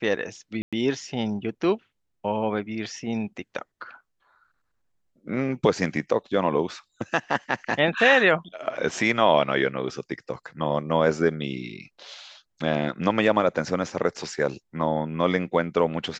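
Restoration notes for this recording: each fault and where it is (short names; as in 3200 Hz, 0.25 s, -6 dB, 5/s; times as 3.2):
0.62–0.73 gap 0.106 s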